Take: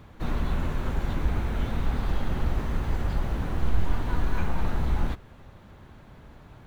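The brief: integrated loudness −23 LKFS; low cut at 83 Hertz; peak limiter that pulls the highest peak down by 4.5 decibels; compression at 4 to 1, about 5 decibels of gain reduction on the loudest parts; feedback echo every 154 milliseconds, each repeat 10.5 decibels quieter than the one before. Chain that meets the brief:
high-pass filter 83 Hz
downward compressor 4 to 1, threshold −33 dBFS
brickwall limiter −29.5 dBFS
repeating echo 154 ms, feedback 30%, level −10.5 dB
level +16 dB

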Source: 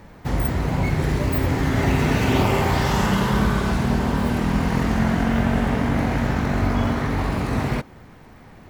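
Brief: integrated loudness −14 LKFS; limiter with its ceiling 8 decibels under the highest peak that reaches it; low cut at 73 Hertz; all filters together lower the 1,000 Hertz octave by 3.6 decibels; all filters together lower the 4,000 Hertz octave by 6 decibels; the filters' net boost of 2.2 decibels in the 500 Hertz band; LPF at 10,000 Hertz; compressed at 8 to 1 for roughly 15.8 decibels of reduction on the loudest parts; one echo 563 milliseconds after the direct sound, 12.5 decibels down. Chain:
high-pass filter 73 Hz
low-pass filter 10,000 Hz
parametric band 500 Hz +4.5 dB
parametric band 1,000 Hz −6 dB
parametric band 4,000 Hz −8 dB
downward compressor 8 to 1, threshold −33 dBFS
brickwall limiter −31.5 dBFS
single-tap delay 563 ms −12.5 dB
level +26.5 dB

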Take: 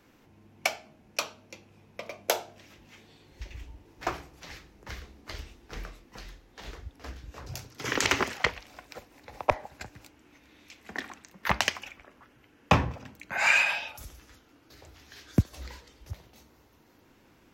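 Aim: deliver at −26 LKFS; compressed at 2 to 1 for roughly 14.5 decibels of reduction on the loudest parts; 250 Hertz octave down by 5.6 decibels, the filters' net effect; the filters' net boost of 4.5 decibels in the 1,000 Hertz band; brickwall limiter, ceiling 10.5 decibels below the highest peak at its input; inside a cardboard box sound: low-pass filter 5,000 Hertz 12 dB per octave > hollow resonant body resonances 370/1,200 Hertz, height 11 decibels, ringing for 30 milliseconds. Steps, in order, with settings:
parametric band 250 Hz −8.5 dB
parametric band 1,000 Hz +6 dB
downward compressor 2 to 1, threshold −44 dBFS
brickwall limiter −28 dBFS
low-pass filter 5,000 Hz 12 dB per octave
hollow resonant body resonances 370/1,200 Hz, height 11 dB, ringing for 30 ms
level +18.5 dB

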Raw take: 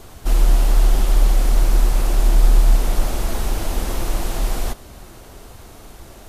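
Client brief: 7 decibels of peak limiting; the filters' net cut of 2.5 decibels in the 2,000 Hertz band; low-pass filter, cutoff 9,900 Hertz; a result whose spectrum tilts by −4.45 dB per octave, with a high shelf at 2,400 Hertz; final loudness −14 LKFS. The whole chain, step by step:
low-pass filter 9,900 Hz
parametric band 2,000 Hz −6.5 dB
high-shelf EQ 2,400 Hz +6 dB
level +8.5 dB
brickwall limiter −0.5 dBFS

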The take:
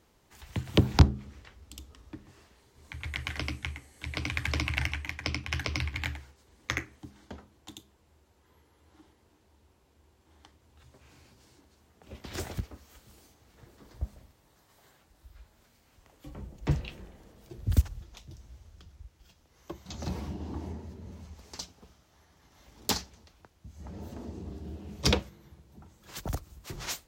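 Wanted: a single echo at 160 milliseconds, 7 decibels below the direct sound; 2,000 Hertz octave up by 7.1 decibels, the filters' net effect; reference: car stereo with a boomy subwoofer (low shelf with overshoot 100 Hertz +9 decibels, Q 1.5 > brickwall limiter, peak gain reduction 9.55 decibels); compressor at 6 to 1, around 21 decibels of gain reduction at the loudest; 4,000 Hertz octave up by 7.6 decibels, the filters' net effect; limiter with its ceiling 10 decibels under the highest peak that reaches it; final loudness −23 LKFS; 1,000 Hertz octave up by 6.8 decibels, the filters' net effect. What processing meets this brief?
parametric band 1,000 Hz +7 dB
parametric band 2,000 Hz +4.5 dB
parametric band 4,000 Hz +8 dB
downward compressor 6 to 1, threshold −35 dBFS
brickwall limiter −22.5 dBFS
low shelf with overshoot 100 Hz +9 dB, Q 1.5
single-tap delay 160 ms −7 dB
level +18 dB
brickwall limiter −9.5 dBFS

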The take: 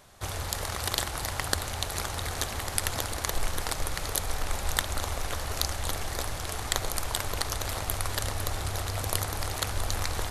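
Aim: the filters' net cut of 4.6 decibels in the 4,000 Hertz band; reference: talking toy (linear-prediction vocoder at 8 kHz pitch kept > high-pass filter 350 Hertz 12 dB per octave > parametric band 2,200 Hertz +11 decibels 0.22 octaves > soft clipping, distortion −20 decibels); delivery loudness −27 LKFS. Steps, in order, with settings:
parametric band 4,000 Hz −6 dB
linear-prediction vocoder at 8 kHz pitch kept
high-pass filter 350 Hz 12 dB per octave
parametric band 2,200 Hz +11 dB 0.22 octaves
soft clipping −21.5 dBFS
level +8 dB

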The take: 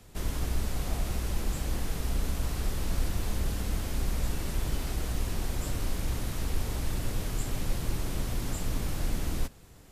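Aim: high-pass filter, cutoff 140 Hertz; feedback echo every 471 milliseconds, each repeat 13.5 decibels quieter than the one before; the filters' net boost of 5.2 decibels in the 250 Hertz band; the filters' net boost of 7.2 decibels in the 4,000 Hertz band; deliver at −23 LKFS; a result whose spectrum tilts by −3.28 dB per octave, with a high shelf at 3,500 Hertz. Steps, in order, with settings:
high-pass filter 140 Hz
parametric band 250 Hz +7.5 dB
high-shelf EQ 3,500 Hz +6.5 dB
parametric band 4,000 Hz +4.5 dB
repeating echo 471 ms, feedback 21%, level −13.5 dB
level +9.5 dB

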